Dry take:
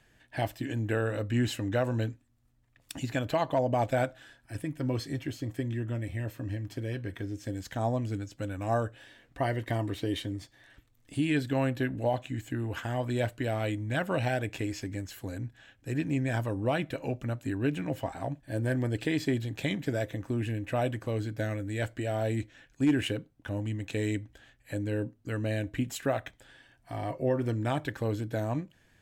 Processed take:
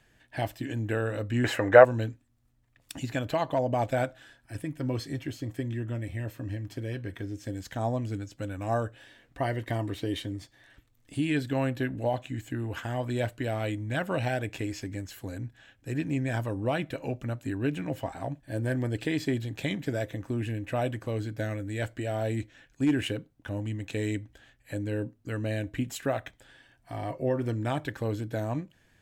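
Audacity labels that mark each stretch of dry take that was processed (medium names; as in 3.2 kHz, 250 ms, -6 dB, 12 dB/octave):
1.440000	1.850000	high-order bell 950 Hz +15.5 dB 2.8 oct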